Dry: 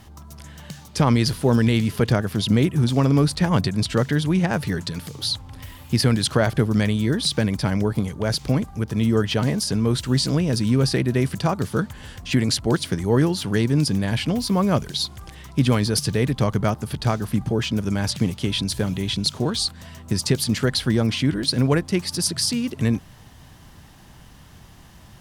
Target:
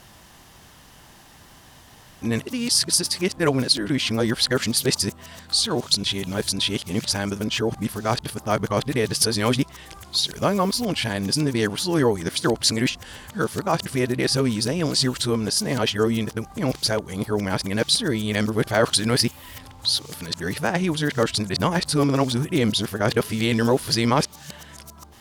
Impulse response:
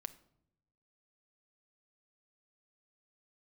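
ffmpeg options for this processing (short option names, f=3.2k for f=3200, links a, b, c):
-af "areverse,bass=f=250:g=-9,treble=f=4k:g=2,volume=2dB"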